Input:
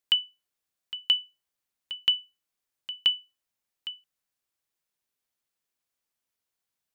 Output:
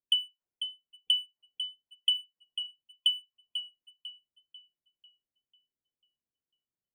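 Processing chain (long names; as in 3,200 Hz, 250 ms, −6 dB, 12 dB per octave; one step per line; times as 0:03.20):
gate on every frequency bin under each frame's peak −25 dB strong
low-pass that shuts in the quiet parts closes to 390 Hz, open at −22 dBFS
downward compressor 3 to 1, threshold −26 dBFS, peak gain reduction 6 dB
leveller curve on the samples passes 1
tape delay 495 ms, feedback 49%, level −6 dB, low-pass 4,200 Hz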